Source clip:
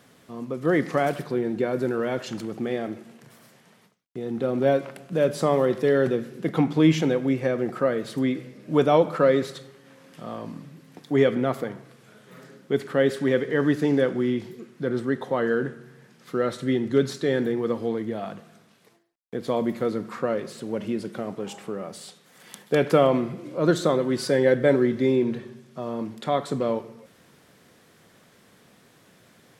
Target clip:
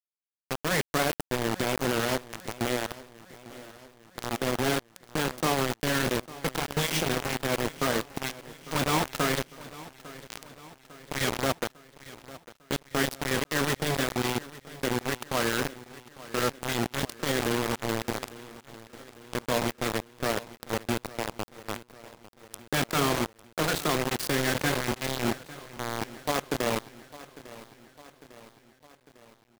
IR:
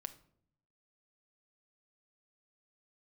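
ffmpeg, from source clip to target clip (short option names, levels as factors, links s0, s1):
-af "afftfilt=real='re*lt(hypot(re,im),0.631)':imag='im*lt(hypot(re,im),0.631)':win_size=1024:overlap=0.75,highshelf=f=2100:g=4,bandreject=f=7300:w=6.3,acrusher=bits=3:mix=0:aa=0.000001,aecho=1:1:851|1702|2553|3404|4255:0.126|0.0718|0.0409|0.0233|0.0133,volume=0.75"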